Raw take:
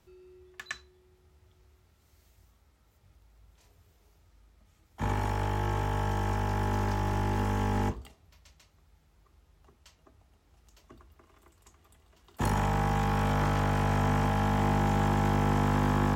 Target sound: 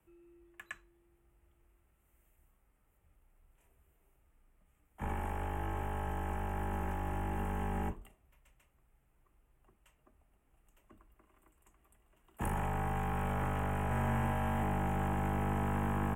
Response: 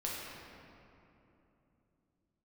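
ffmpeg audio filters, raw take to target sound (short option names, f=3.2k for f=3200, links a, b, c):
-filter_complex "[0:a]firequalizer=gain_entry='entry(2800,0);entry(4400,-25);entry(8400,3)':delay=0.05:min_phase=1,afreqshift=-23,asettb=1/sr,asplit=3[a][b][c];[a]atrim=end=13.864[d];[b]atrim=start=13.86:end=14.63,asetpts=PTS-STARTPTS,afade=t=in:d=0.004:c=qsin,afade=t=out:st=0.766:d=0.004:c=qsin,asplit=2[e][f];[f]adelay=48,volume=-3.5dB[g];[e][g]amix=inputs=2:normalize=0,atrim=end_sample=33957[h];[c]atrim=start=14.626[i];[d][h]acrossfade=d=0.004:c1=hsin:c2=qsin[j];[j][i]acrossfade=d=0.004:c1=qsin:c2=hsin,volume=-7dB"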